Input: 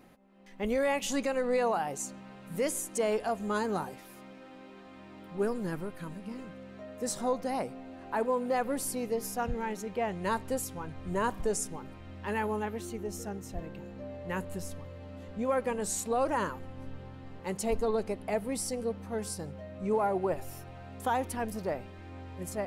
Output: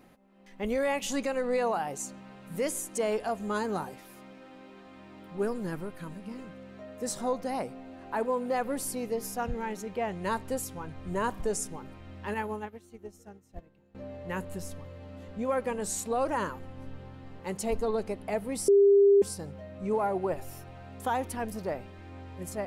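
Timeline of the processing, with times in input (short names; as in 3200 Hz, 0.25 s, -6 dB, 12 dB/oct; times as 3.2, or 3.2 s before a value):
12.34–13.95 upward expander 2.5:1, over -43 dBFS
18.68–19.22 bleep 400 Hz -16 dBFS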